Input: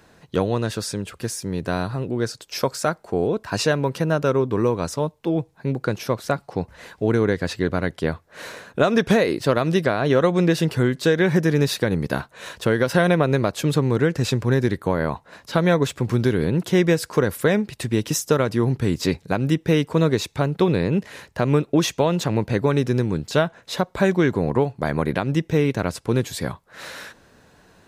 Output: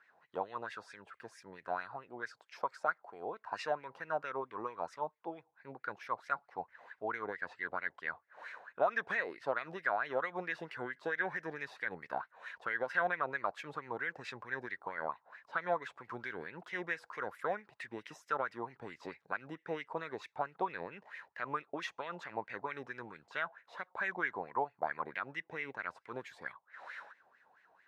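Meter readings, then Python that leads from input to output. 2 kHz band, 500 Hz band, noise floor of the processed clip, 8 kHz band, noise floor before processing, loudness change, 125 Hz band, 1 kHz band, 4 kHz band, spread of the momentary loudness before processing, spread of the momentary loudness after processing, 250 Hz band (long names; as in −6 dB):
−9.0 dB, −20.0 dB, −76 dBFS, below −30 dB, −56 dBFS, −18.0 dB, −34.5 dB, −9.5 dB, −23.0 dB, 9 LU, 12 LU, −28.5 dB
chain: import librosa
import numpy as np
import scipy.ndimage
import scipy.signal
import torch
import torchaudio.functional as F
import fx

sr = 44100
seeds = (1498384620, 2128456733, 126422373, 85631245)

y = fx.wah_lfo(x, sr, hz=4.5, low_hz=750.0, high_hz=2100.0, q=6.0)
y = y * 10.0 ** (-1.5 / 20.0)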